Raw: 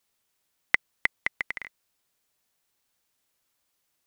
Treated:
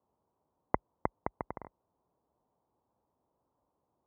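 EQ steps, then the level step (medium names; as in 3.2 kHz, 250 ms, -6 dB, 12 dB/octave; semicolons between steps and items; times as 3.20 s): high-pass 45 Hz 24 dB/octave; Chebyshev low-pass 990 Hz, order 4; +9.0 dB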